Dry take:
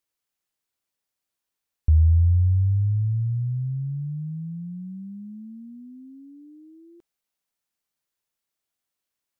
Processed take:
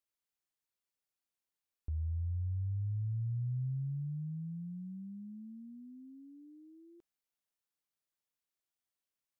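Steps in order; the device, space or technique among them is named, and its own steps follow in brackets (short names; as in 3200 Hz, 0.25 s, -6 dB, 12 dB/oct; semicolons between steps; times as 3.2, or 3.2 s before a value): stacked limiters (limiter -17 dBFS, peak gain reduction 5.5 dB; limiter -20.5 dBFS, peak gain reduction 3.5 dB; limiter -23.5 dBFS, peak gain reduction 3 dB); gain -8.5 dB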